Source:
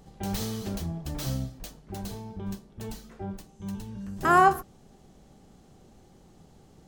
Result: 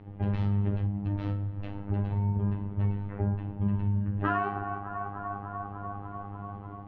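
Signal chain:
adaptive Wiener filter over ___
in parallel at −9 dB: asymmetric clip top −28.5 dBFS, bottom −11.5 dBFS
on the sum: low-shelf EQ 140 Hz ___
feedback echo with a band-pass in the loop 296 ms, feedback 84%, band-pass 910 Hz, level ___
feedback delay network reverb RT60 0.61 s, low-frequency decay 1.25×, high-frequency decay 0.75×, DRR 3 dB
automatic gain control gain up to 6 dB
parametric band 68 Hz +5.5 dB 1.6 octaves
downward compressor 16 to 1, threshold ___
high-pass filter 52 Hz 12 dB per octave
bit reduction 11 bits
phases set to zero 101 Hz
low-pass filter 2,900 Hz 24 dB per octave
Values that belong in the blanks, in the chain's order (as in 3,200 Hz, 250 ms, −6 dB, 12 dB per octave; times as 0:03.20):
9 samples, +8 dB, −19.5 dB, −22 dBFS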